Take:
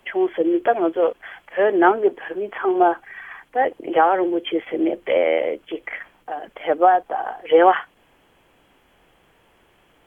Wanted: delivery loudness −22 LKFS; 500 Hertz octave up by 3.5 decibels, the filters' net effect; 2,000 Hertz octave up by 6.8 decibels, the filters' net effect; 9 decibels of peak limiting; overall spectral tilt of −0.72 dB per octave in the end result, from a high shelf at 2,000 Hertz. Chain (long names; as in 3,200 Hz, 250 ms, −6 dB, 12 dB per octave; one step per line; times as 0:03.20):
parametric band 500 Hz +3.5 dB
high-shelf EQ 2,000 Hz +8 dB
parametric band 2,000 Hz +4 dB
level −2.5 dB
brickwall limiter −9.5 dBFS